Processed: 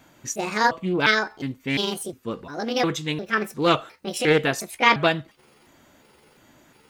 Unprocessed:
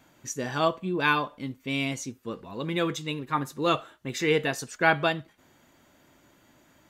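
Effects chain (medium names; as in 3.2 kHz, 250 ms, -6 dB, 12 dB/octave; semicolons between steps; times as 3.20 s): pitch shift switched off and on +6.5 st, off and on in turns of 354 ms; loudspeaker Doppler distortion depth 0.16 ms; trim +5 dB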